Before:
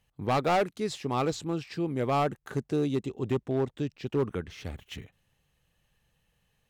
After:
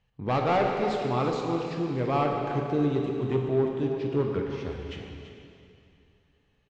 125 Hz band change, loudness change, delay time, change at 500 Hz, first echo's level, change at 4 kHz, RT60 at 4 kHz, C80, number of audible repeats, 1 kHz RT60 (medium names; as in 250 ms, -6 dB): +3.0 dB, +2.5 dB, 334 ms, +3.5 dB, -10.5 dB, -1.0 dB, 2.5 s, 2.5 dB, 1, 2.7 s